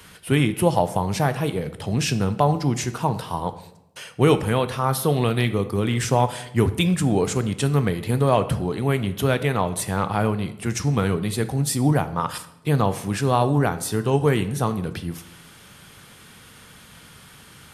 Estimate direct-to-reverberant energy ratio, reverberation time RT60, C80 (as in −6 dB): 11.0 dB, 0.85 s, 16.5 dB